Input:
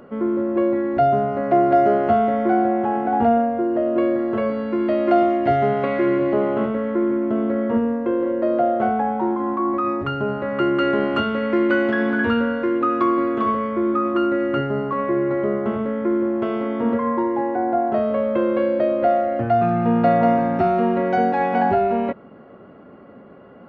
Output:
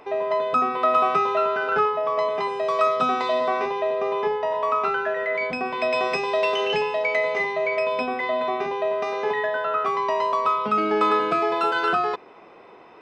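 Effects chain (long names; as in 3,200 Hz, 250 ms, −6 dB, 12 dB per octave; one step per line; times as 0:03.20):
change of speed 1.82×
level −3.5 dB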